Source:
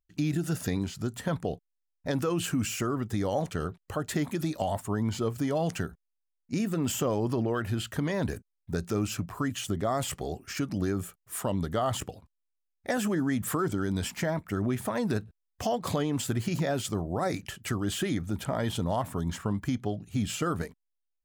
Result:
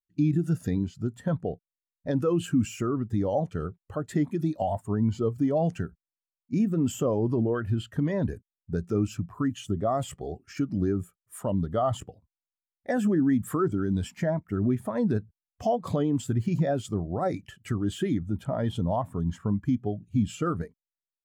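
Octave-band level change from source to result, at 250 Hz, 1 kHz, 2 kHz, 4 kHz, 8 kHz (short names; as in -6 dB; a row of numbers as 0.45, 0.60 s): +3.5, +0.5, -5.0, -7.0, -7.5 dB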